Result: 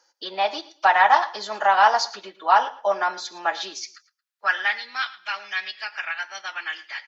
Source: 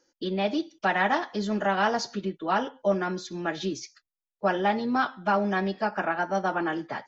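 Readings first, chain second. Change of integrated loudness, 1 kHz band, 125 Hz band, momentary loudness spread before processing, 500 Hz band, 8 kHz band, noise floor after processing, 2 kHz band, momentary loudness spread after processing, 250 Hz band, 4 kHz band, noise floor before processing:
+4.5 dB, +7.0 dB, below −20 dB, 7 LU, −1.0 dB, can't be measured, −77 dBFS, +6.5 dB, 14 LU, −18.0 dB, +7.5 dB, below −85 dBFS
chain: parametric band 4,500 Hz +4.5 dB 0.56 octaves
high-pass filter sweep 870 Hz → 2,300 Hz, 0:03.52–0:05.09
repeating echo 112 ms, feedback 22%, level −18.5 dB
every ending faded ahead of time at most 480 dB per second
level +4 dB

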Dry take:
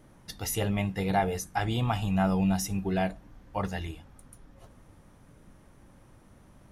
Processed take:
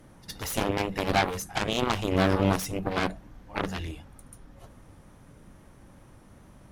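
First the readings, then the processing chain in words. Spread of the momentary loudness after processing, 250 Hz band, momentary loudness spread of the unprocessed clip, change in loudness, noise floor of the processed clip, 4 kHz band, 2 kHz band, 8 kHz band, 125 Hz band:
13 LU, −0.5 dB, 11 LU, +1.5 dB, −54 dBFS, +6.0 dB, +5.0 dB, −0.5 dB, −2.0 dB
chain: tape wow and flutter 27 cents
echo ahead of the sound 63 ms −21 dB
harmonic generator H 4 −15 dB, 7 −9 dB, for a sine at −14 dBFS

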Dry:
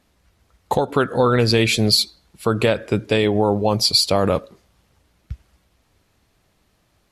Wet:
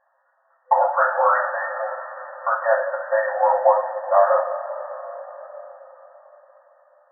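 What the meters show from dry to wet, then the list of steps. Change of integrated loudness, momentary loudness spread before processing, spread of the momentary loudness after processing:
−2.5 dB, 8 LU, 18 LU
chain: coupled-rooms reverb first 0.36 s, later 4.6 s, from −18 dB, DRR −7.5 dB
brick-wall band-pass 510–1,900 Hz
level −2.5 dB

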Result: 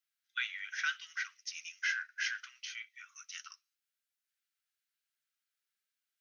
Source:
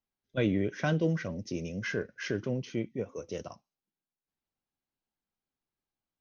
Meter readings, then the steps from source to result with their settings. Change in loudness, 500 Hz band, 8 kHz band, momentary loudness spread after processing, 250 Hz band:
−5.0 dB, below −40 dB, can't be measured, 12 LU, below −40 dB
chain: Butterworth high-pass 1,300 Hz 72 dB per octave
in parallel at −2 dB: brickwall limiter −31.5 dBFS, peak gain reduction 8 dB

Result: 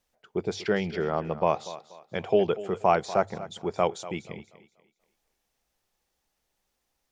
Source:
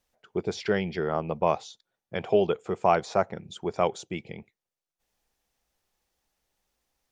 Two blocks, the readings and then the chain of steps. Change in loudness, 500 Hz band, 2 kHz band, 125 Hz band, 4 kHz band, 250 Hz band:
0.0 dB, 0.0 dB, 0.0 dB, −0.5 dB, 0.0 dB, 0.0 dB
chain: mains-hum notches 50/100 Hz
feedback echo with a high-pass in the loop 241 ms, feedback 33%, high-pass 180 Hz, level −15 dB

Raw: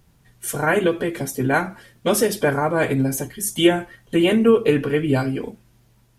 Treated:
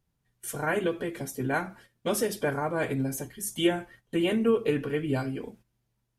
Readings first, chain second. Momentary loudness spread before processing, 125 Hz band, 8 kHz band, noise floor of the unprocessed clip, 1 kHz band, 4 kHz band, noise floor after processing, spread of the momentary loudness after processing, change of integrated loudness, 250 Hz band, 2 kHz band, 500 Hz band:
11 LU, −9.0 dB, −9.0 dB, −58 dBFS, −9.0 dB, −9.0 dB, −78 dBFS, 11 LU, −9.0 dB, −9.0 dB, −9.0 dB, −9.0 dB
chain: noise gate −43 dBFS, range −11 dB
level −9 dB

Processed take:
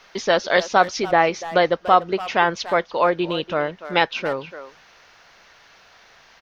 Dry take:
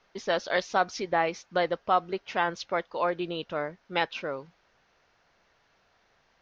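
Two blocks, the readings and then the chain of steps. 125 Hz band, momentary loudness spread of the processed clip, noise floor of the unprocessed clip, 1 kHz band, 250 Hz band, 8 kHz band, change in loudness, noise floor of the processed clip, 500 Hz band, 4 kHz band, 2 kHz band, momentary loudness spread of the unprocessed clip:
+9.0 dB, 8 LU, −68 dBFS, +9.0 dB, +9.0 dB, can't be measured, +9.0 dB, −52 dBFS, +9.0 dB, +9.0 dB, +9.0 dB, 7 LU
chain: far-end echo of a speakerphone 290 ms, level −14 dB
one half of a high-frequency compander encoder only
level +9 dB

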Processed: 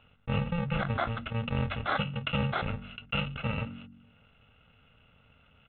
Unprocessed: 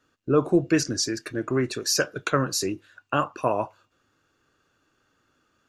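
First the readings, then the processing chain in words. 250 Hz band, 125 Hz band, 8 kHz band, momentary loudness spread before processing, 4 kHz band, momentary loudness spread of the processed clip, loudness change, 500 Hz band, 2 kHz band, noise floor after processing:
−9.0 dB, +1.0 dB, below −40 dB, 8 LU, −7.0 dB, 6 LU, −7.0 dB, −12.0 dB, −3.0 dB, −63 dBFS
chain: samples in bit-reversed order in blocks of 128 samples
noise gate −52 dBFS, range −20 dB
high-shelf EQ 2,500 Hz −11 dB
hum removal 46.59 Hz, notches 7
downsampling to 8,000 Hz
envelope flattener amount 50%
level +2 dB

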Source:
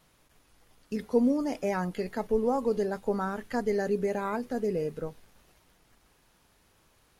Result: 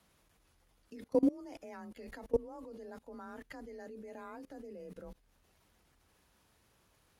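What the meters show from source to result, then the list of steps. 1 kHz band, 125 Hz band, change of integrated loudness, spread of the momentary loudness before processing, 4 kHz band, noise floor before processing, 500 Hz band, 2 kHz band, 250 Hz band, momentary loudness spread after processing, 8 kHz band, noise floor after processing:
−16.0 dB, −17.0 dB, −9.5 dB, 9 LU, −13.5 dB, −66 dBFS, −10.5 dB, −15.0 dB, −8.5 dB, 19 LU, below −10 dB, −71 dBFS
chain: frequency shifter +30 Hz
output level in coarse steps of 23 dB
level −1.5 dB

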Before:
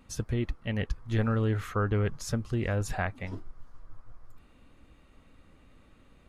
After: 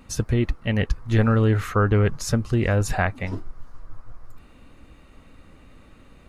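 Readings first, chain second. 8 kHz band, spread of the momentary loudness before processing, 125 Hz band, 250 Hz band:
+8.5 dB, 7 LU, +8.5 dB, +8.5 dB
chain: notch filter 3,300 Hz, Q 19
level +8.5 dB

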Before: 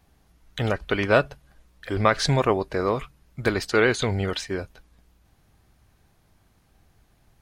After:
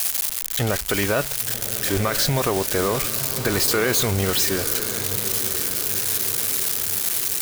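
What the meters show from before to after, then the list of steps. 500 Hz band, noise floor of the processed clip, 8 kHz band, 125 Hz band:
0.0 dB, −29 dBFS, +19.0 dB, +1.5 dB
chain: spike at every zero crossing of −16 dBFS
brickwall limiter −15.5 dBFS, peak gain reduction 10.5 dB
feedback delay with all-pass diffusion 1,041 ms, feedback 56%, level −10 dB
level +3.5 dB

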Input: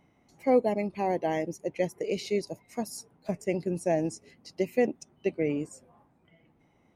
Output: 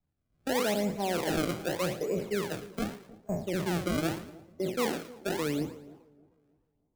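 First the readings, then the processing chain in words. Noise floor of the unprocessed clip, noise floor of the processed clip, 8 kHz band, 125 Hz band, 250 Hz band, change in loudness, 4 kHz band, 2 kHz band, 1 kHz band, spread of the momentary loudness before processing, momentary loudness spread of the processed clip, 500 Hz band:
−66 dBFS, −78 dBFS, +3.5 dB, +2.0 dB, −1.0 dB, −2.0 dB, +7.0 dB, +3.5 dB, −2.0 dB, 12 LU, 8 LU, −4.0 dB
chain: peak hold with a decay on every bin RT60 0.48 s
low-pass that shuts in the quiet parts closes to 1,300 Hz
low-pass filter 1,800 Hz 12 dB per octave
low-shelf EQ 85 Hz +10.5 dB
brickwall limiter −22 dBFS, peak gain reduction 10 dB
sample-and-hold swept by an LFO 28×, swing 160% 0.83 Hz
on a send: echo with a time of its own for lows and highs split 930 Hz, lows 308 ms, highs 113 ms, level −12.5 dB
on the sum: multiband upward and downward expander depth 70%

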